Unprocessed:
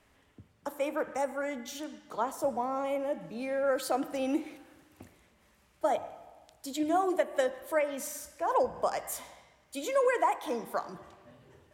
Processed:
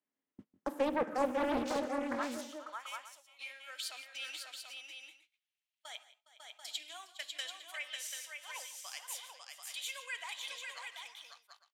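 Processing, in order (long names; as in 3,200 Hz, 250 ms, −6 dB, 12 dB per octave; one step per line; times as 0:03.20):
high-pass filter sweep 240 Hz → 3,000 Hz, 0:01.64–0:02.37
noise gate −48 dBFS, range −28 dB
high-shelf EQ 10,000 Hz −8.5 dB
multi-tap delay 149/171/411/548/738/854 ms −18.5/−20/−17/−5/−6.5/−17.5 dB
highs frequency-modulated by the lows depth 0.6 ms
level −2 dB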